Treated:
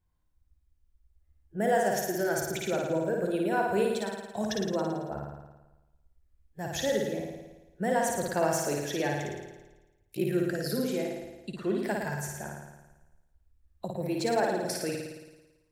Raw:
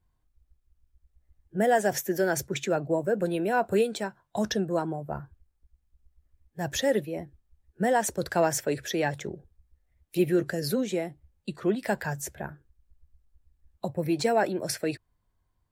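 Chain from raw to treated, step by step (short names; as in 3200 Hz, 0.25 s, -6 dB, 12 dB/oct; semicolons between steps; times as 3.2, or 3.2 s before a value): 9.31–10.22 ring modulator 29 Hz; flutter echo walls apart 9.5 m, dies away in 1.1 s; gain -5 dB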